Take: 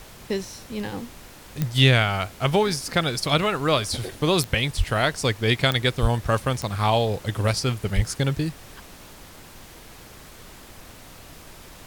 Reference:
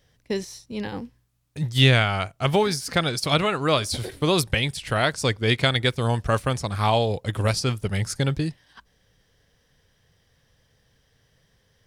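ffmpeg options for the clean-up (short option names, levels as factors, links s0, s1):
-filter_complex "[0:a]adeclick=t=4,asplit=3[s0][s1][s2];[s0]afade=t=out:st=4.77:d=0.02[s3];[s1]highpass=f=140:w=0.5412,highpass=f=140:w=1.3066,afade=t=in:st=4.77:d=0.02,afade=t=out:st=4.89:d=0.02[s4];[s2]afade=t=in:st=4.89:d=0.02[s5];[s3][s4][s5]amix=inputs=3:normalize=0,asplit=3[s6][s7][s8];[s6]afade=t=out:st=6.01:d=0.02[s9];[s7]highpass=f=140:w=0.5412,highpass=f=140:w=1.3066,afade=t=in:st=6.01:d=0.02,afade=t=out:st=6.13:d=0.02[s10];[s8]afade=t=in:st=6.13:d=0.02[s11];[s9][s10][s11]amix=inputs=3:normalize=0,asplit=3[s12][s13][s14];[s12]afade=t=out:st=7.95:d=0.02[s15];[s13]highpass=f=140:w=0.5412,highpass=f=140:w=1.3066,afade=t=in:st=7.95:d=0.02,afade=t=out:st=8.07:d=0.02[s16];[s14]afade=t=in:st=8.07:d=0.02[s17];[s15][s16][s17]amix=inputs=3:normalize=0,afftdn=nr=20:nf=-45"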